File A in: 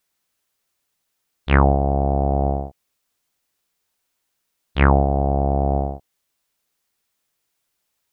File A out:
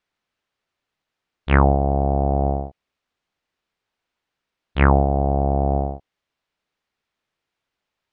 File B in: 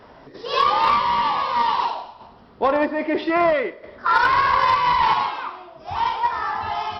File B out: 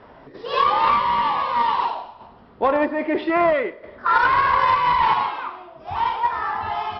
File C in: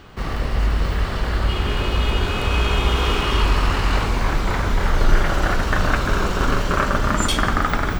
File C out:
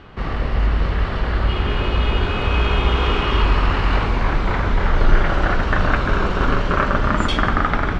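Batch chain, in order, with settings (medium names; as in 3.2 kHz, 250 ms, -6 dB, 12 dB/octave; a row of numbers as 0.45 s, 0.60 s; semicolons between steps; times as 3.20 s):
low-pass 3.3 kHz 12 dB/octave; normalise loudness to -20 LUFS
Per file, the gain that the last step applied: 0.0 dB, 0.0 dB, +1.5 dB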